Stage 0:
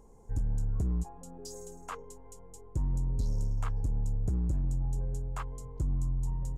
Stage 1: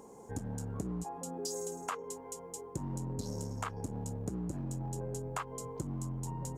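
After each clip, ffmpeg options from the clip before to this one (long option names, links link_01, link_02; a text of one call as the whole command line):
ffmpeg -i in.wav -af "highpass=210,acompressor=threshold=-43dB:ratio=6,volume=9dB" out.wav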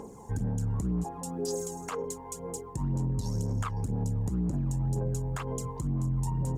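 ffmpeg -i in.wav -af "aphaser=in_gain=1:out_gain=1:delay=1.1:decay=0.55:speed=2:type=sinusoidal,lowshelf=frequency=180:gain=7,alimiter=level_in=2dB:limit=-24dB:level=0:latency=1:release=47,volume=-2dB,volume=3dB" out.wav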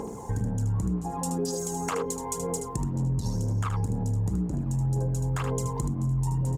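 ffmpeg -i in.wav -filter_complex "[0:a]acompressor=threshold=-34dB:ratio=6,asplit=2[link_01][link_02];[link_02]aecho=0:1:76:0.447[link_03];[link_01][link_03]amix=inputs=2:normalize=0,volume=8dB" out.wav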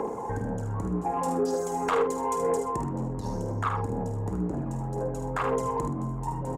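ffmpeg -i in.wav -filter_complex "[0:a]acrossover=split=320 2200:gain=0.2 1 0.158[link_01][link_02][link_03];[link_01][link_02][link_03]amix=inputs=3:normalize=0,aeval=exprs='0.112*sin(PI/2*1.58*val(0)/0.112)':channel_layout=same,asplit=2[link_04][link_05];[link_05]adelay=50,volume=-8.5dB[link_06];[link_04][link_06]amix=inputs=2:normalize=0" out.wav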